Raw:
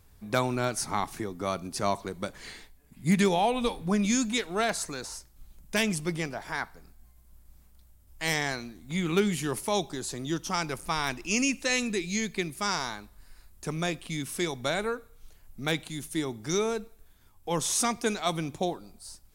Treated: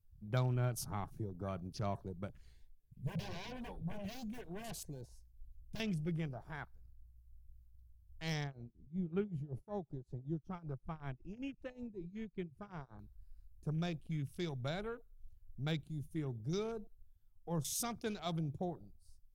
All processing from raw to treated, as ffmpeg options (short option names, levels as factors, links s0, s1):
-filter_complex "[0:a]asettb=1/sr,asplit=3[s0][s1][s2];[s0]atrim=end=2.554[s3];[s1]atrim=start=2.55:end=5.8,asetpts=PTS-STARTPTS,afade=t=in:d=0.004:c=qsin,afade=t=out:st=3.246:d=0.004:c=qsin,aeval=exprs='0.0376*(abs(mod(val(0)/0.0376+3,4)-2)-1)':c=same,asuperstop=centerf=1300:order=12:qfactor=4.4[s4];[s2]atrim=start=5.796[s5];[s3][s4]acrossfade=d=0.004:c1=hsin:c2=qsin[s6];[s6][s5]acrossfade=d=0.004:c1=qsin:c2=hsin,asettb=1/sr,asplit=3[s7][s8][s9];[s7]atrim=end=8.444[s10];[s8]atrim=start=8.44:end=12.99,asetpts=PTS-STARTPTS,afade=t=in:d=0.004:c=qsin,afade=t=out:st=4.546:d=0.004:c=qsin,lowpass=f=1300:p=1,tremolo=f=5.3:d=0.87[s11];[s9]atrim=start=12.986[s12];[s10][s11]acrossfade=d=0.004:c1=hsin:c2=qsin[s13];[s13][s12]acrossfade=d=0.004:c1=qsin:c2=hsin,afwtdn=0.01,equalizer=f=125:t=o:w=1:g=7,equalizer=f=250:t=o:w=1:g=-9,equalizer=f=500:t=o:w=1:g=-5,equalizer=f=1000:t=o:w=1:g=-9,equalizer=f=2000:t=o:w=1:g=-10,equalizer=f=4000:t=o:w=1:g=-5,equalizer=f=8000:t=o:w=1:g=-8,volume=0.668"